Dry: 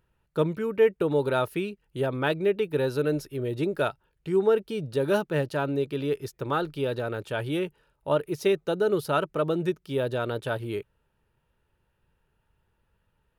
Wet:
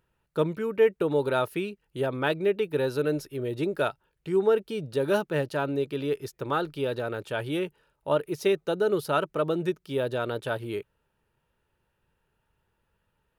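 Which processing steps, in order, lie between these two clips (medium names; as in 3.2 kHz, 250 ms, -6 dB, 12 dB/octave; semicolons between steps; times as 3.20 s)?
bass shelf 130 Hz -6 dB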